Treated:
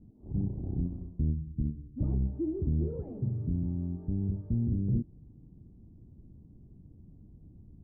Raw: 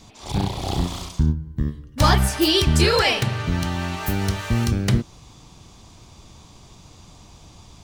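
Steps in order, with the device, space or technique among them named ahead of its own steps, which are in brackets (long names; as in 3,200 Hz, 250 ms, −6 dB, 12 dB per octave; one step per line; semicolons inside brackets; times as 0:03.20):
overdriven synthesiser ladder filter (soft clipping −18 dBFS, distortion −10 dB; transistor ladder low-pass 360 Hz, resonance 25%)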